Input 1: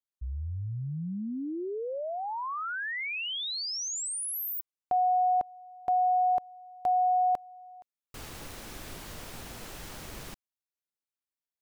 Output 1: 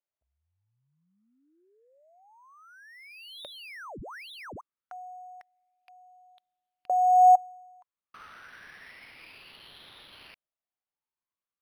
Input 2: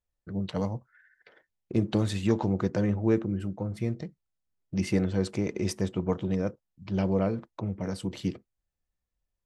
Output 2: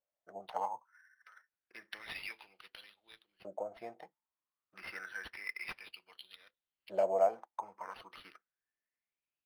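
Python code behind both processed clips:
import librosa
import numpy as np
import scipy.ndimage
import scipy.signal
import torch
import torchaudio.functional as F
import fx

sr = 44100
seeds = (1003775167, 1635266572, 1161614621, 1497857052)

y = fx.filter_lfo_highpass(x, sr, shape='saw_up', hz=0.29, low_hz=570.0, high_hz=4700.0, q=7.8)
y = np.interp(np.arange(len(y)), np.arange(len(y))[::6], y[::6])
y = y * 10.0 ** (-7.5 / 20.0)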